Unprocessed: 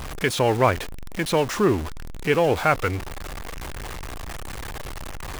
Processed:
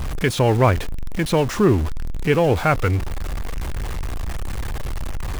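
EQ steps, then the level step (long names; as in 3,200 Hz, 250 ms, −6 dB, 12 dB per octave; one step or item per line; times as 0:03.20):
low-shelf EQ 220 Hz +10.5 dB
0.0 dB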